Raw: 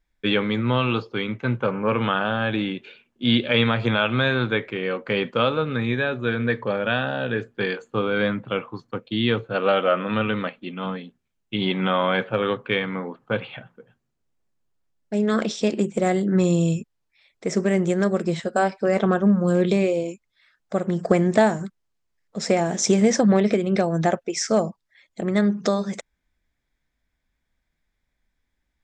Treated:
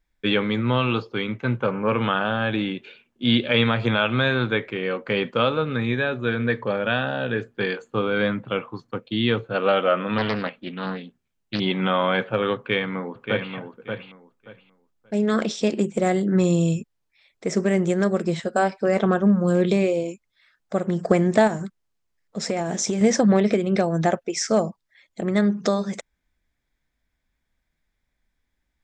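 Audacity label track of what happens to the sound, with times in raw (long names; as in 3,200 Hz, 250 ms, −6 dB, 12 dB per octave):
10.180000	11.600000	highs frequency-modulated by the lows depth 0.5 ms
12.570000	13.530000	delay throw 580 ms, feedback 20%, level −6 dB
21.470000	23.010000	downward compressor, threshold −20 dBFS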